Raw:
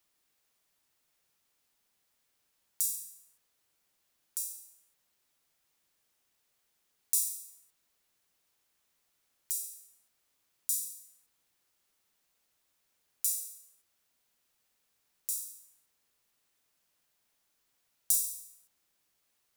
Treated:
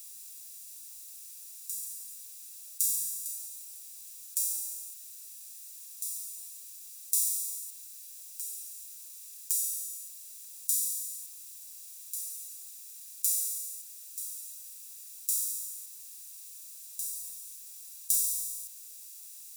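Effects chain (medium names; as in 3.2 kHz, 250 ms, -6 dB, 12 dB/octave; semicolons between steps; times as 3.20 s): spectral levelling over time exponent 0.4; reverse echo 1110 ms -9.5 dB; trim -1 dB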